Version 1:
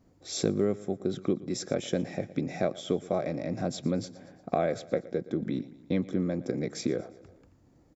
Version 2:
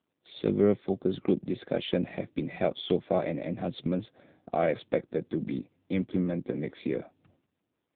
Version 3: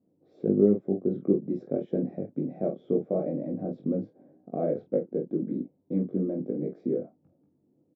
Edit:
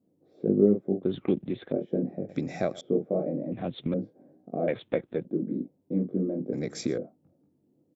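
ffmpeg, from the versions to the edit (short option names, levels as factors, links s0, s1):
-filter_complex "[1:a]asplit=3[s0][s1][s2];[0:a]asplit=2[s3][s4];[2:a]asplit=6[s5][s6][s7][s8][s9][s10];[s5]atrim=end=1.032[s11];[s0]atrim=start=1.028:end=1.722[s12];[s6]atrim=start=1.718:end=2.292[s13];[s3]atrim=start=2.288:end=2.812[s14];[s7]atrim=start=2.808:end=3.522[s15];[s1]atrim=start=3.518:end=3.942[s16];[s8]atrim=start=3.938:end=4.682[s17];[s2]atrim=start=4.678:end=5.252[s18];[s9]atrim=start=5.248:end=6.532[s19];[s4]atrim=start=6.528:end=6.982[s20];[s10]atrim=start=6.978[s21];[s11][s12]acrossfade=d=0.004:c1=hsin:c2=hsin[s22];[s22][s13]acrossfade=d=0.004:c1=hsin:c2=hsin[s23];[s23][s14]acrossfade=d=0.004:c1=hsin:c2=hsin[s24];[s24][s15]acrossfade=d=0.004:c1=hsin:c2=hsin[s25];[s25][s16]acrossfade=d=0.004:c1=hsin:c2=hsin[s26];[s26][s17]acrossfade=d=0.004:c1=hsin:c2=hsin[s27];[s27][s18]acrossfade=d=0.004:c1=hsin:c2=hsin[s28];[s28][s19]acrossfade=d=0.004:c1=hsin:c2=hsin[s29];[s29][s20]acrossfade=d=0.004:c1=hsin:c2=hsin[s30];[s30][s21]acrossfade=d=0.004:c1=hsin:c2=hsin"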